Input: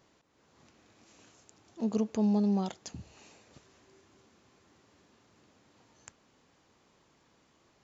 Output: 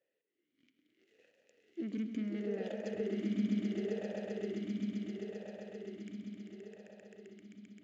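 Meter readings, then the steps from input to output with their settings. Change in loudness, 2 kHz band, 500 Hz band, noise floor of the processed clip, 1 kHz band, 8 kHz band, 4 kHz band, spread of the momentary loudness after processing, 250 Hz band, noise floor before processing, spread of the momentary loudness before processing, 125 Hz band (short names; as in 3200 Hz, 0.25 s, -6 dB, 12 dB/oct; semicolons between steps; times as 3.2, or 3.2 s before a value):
-8.5 dB, +6.5 dB, +1.0 dB, -85 dBFS, -12.0 dB, n/a, -1.0 dB, 20 LU, -3.5 dB, -68 dBFS, 19 LU, -4.5 dB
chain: sample leveller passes 3; on a send: swelling echo 0.131 s, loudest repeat 8, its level -5.5 dB; on the sum: vowel sweep e-i 0.72 Hz; gain -1 dB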